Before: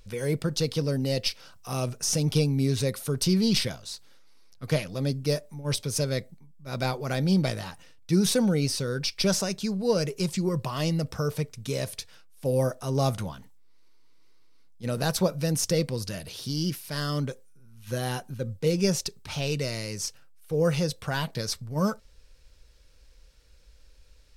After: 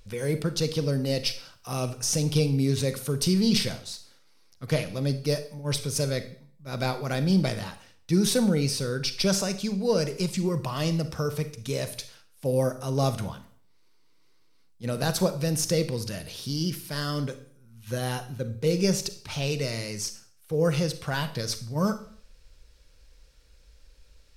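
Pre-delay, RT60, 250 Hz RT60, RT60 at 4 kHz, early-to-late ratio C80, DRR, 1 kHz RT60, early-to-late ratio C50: 34 ms, 0.50 s, 0.60 s, 0.50 s, 16.5 dB, 10.5 dB, 0.50 s, 13.0 dB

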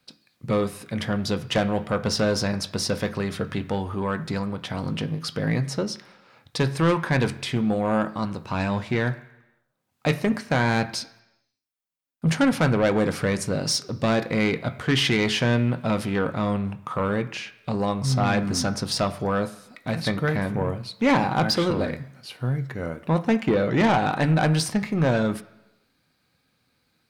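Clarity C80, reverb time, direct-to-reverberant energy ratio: 18.0 dB, 1.0 s, 9.0 dB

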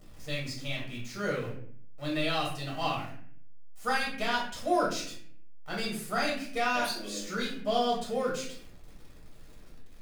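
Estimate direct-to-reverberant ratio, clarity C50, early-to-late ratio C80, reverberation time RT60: -5.0 dB, 4.0 dB, 8.5 dB, 0.60 s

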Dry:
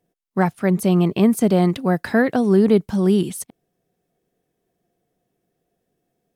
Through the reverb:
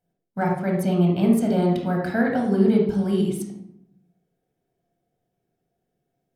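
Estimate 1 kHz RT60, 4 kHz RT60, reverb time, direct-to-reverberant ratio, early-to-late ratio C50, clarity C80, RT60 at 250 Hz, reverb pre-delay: 0.75 s, 0.50 s, 0.80 s, -1.0 dB, 3.0 dB, 7.0 dB, 1.1 s, 17 ms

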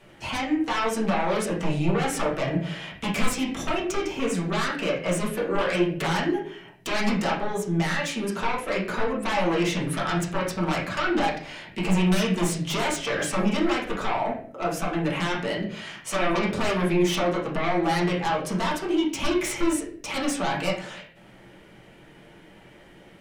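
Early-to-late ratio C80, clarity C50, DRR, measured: 10.5 dB, 5.5 dB, -6.0 dB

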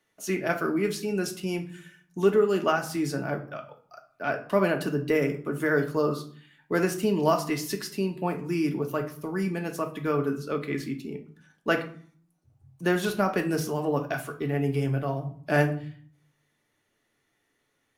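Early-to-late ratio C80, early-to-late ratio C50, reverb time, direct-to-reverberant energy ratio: 16.5 dB, 12.0 dB, 0.50 s, 4.0 dB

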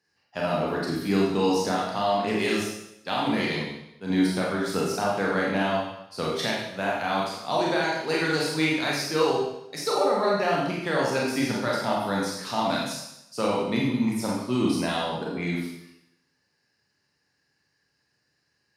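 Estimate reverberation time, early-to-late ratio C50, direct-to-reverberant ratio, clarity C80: 0.85 s, 0.5 dB, -4.0 dB, 4.0 dB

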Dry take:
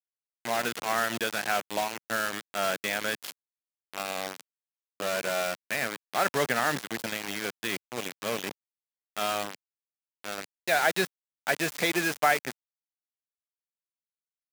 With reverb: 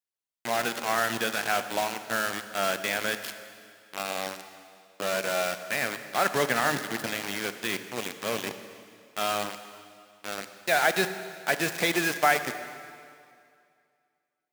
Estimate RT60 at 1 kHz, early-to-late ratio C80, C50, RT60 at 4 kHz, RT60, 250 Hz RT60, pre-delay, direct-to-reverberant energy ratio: 2.3 s, 11.0 dB, 10.5 dB, 2.1 s, 2.3 s, 2.2 s, 27 ms, 10.0 dB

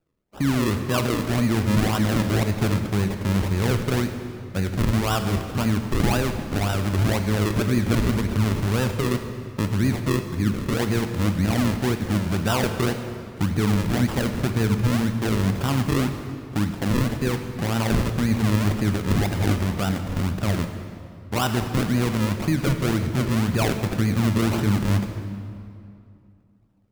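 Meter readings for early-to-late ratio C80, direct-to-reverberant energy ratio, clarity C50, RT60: 8.5 dB, 6.5 dB, 7.5 dB, 2.5 s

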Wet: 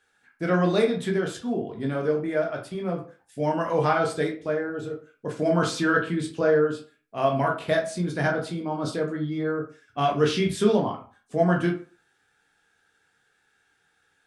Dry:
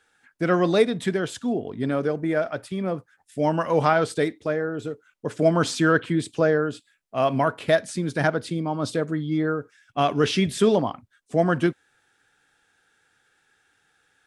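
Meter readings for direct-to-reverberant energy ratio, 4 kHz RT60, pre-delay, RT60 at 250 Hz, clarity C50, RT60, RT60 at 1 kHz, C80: 0.0 dB, 0.25 s, 11 ms, 0.40 s, 9.0 dB, 0.40 s, 0.40 s, 14.5 dB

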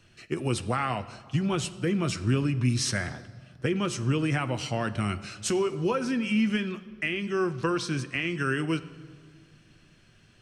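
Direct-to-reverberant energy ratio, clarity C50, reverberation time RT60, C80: 10.0 dB, 15.5 dB, 1.9 s, 16.5 dB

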